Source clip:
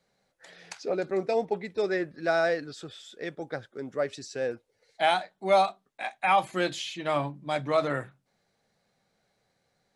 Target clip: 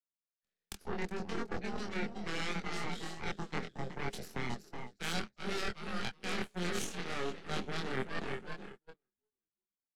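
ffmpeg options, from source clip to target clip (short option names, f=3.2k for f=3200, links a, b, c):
-filter_complex "[0:a]asplit=6[a][b][c][d][e][f];[b]adelay=369,afreqshift=-53,volume=-9dB[g];[c]adelay=738,afreqshift=-106,volume=-15.7dB[h];[d]adelay=1107,afreqshift=-159,volume=-22.5dB[i];[e]adelay=1476,afreqshift=-212,volume=-29.2dB[j];[f]adelay=1845,afreqshift=-265,volume=-36dB[k];[a][g][h][i][j][k]amix=inputs=6:normalize=0,afftfilt=real='re*lt(hypot(re,im),0.447)':imag='im*lt(hypot(re,im),0.447)':win_size=1024:overlap=0.75,aeval=exprs='0.224*(cos(1*acos(clip(val(0)/0.224,-1,1)))-cos(1*PI/2))+0.02*(cos(2*acos(clip(val(0)/0.224,-1,1)))-cos(2*PI/2))+0.0562*(cos(6*acos(clip(val(0)/0.224,-1,1)))-cos(6*PI/2))+0.0355*(cos(7*acos(clip(val(0)/0.224,-1,1)))-cos(7*PI/2))':c=same,acrossover=split=140|1700[l][m][n];[m]volume=20dB,asoftclip=hard,volume=-20dB[o];[l][o][n]amix=inputs=3:normalize=0,equalizer=f=110:t=o:w=1.3:g=-3.5,flanger=delay=22.5:depth=2.3:speed=0.73,equalizer=f=200:t=o:w=0.33:g=12,equalizer=f=400:t=o:w=0.33:g=7,equalizer=f=630:t=o:w=0.33:g=-5,equalizer=f=1k:t=o:w=0.33:g=-7,agate=range=-32dB:threshold=-59dB:ratio=16:detection=peak,areverse,acompressor=threshold=-42dB:ratio=10,areverse,volume=9.5dB"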